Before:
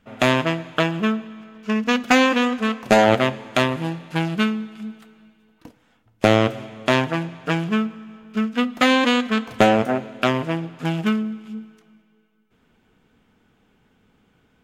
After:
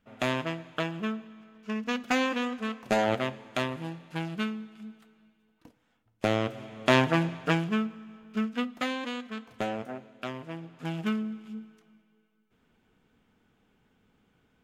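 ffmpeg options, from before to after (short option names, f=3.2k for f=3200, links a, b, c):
-af "volume=10dB,afade=t=in:st=6.49:d=0.78:silence=0.281838,afade=t=out:st=7.27:d=0.42:silence=0.446684,afade=t=out:st=8.41:d=0.53:silence=0.316228,afade=t=in:st=10.42:d=0.91:silence=0.316228"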